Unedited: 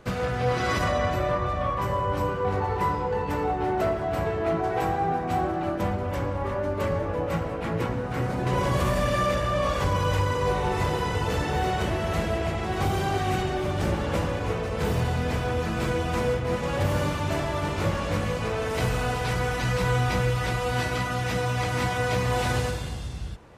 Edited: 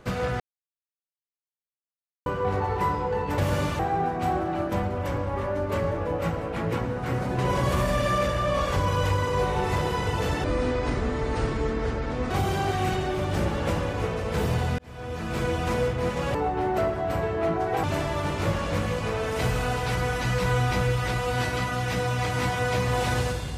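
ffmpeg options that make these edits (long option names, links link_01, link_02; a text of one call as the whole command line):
ffmpeg -i in.wav -filter_complex "[0:a]asplit=10[link_01][link_02][link_03][link_04][link_05][link_06][link_07][link_08][link_09][link_10];[link_01]atrim=end=0.4,asetpts=PTS-STARTPTS,afade=type=out:start_time=0.396:duration=0.004:curve=hsin[link_11];[link_02]atrim=start=0.4:end=2.26,asetpts=PTS-STARTPTS,volume=0[link_12];[link_03]atrim=start=2.26:end=3.382,asetpts=PTS-STARTPTS,afade=type=in:duration=0.004:curve=hsin[link_13];[link_04]atrim=start=16.808:end=17.222[link_14];[link_05]atrim=start=4.868:end=11.524[link_15];[link_06]atrim=start=11.52:end=12.77,asetpts=PTS-STARTPTS,asetrate=29547,aresample=44100,atrim=end_sample=82276,asetpts=PTS-STARTPTS[link_16];[link_07]atrim=start=12.766:end=15.25,asetpts=PTS-STARTPTS,afade=type=out:start_time=2.48:duration=0.004:curve=hsin[link_17];[link_08]atrim=start=15.25:end=16.812,asetpts=PTS-STARTPTS,afade=type=in:duration=0.7[link_18];[link_09]atrim=start=3.378:end=4.872[link_19];[link_10]atrim=start=17.218[link_20];[link_11][link_12][link_13]concat=n=3:v=0:a=1[link_21];[link_21][link_14]acrossfade=duration=0.004:curve1=hsin:curve2=hsin[link_22];[link_22][link_15]acrossfade=duration=0.004:curve1=hsin:curve2=hsin[link_23];[link_23][link_16]acrossfade=duration=0.004:curve1=hsin:curve2=hsin[link_24];[link_17][link_18]concat=n=2:v=0:a=1[link_25];[link_24][link_25]acrossfade=duration=0.004:curve1=hsin:curve2=hsin[link_26];[link_26][link_19]acrossfade=duration=0.004:curve1=hsin:curve2=hsin[link_27];[link_27][link_20]acrossfade=duration=0.004:curve1=hsin:curve2=hsin" out.wav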